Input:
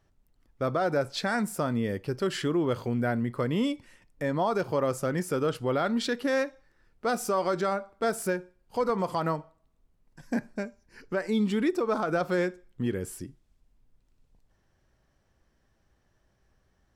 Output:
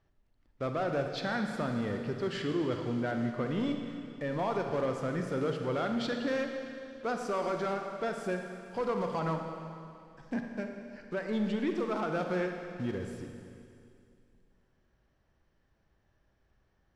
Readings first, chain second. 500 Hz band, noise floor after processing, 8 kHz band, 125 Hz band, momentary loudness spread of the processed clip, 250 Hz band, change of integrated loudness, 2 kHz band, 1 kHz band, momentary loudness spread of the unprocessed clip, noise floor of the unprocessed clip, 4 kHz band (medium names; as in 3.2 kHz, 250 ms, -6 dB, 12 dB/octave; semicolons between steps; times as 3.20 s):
-4.5 dB, -72 dBFS, -12.5 dB, -4.0 dB, 9 LU, -4.0 dB, -4.5 dB, -4.5 dB, -5.0 dB, 7 LU, -71 dBFS, -5.0 dB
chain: block-companded coder 5-bit; low-pass 4.4 kHz 12 dB/octave; saturation -21 dBFS, distortion -18 dB; Schroeder reverb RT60 2.5 s, DRR 4 dB; trim -4 dB